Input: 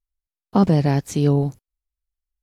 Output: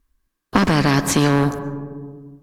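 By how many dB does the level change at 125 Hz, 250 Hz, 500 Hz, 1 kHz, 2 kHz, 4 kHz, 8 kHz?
-1.0, +2.0, +1.0, +6.5, +15.5, +12.0, +11.5 dB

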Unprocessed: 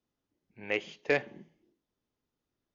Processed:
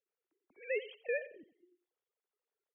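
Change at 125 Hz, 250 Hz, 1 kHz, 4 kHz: under -35 dB, -19.0 dB, under -25 dB, -11.5 dB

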